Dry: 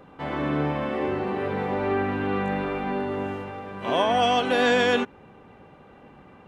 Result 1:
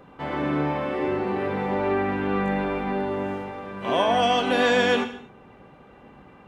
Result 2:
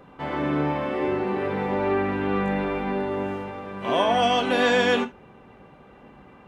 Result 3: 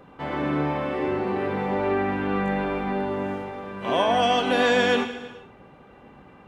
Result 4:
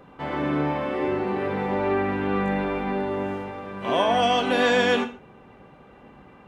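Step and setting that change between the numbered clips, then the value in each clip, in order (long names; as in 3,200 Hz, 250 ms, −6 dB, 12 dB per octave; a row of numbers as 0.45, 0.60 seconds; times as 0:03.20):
reverb whose tail is shaped and stops, gate: 280, 100, 490, 170 milliseconds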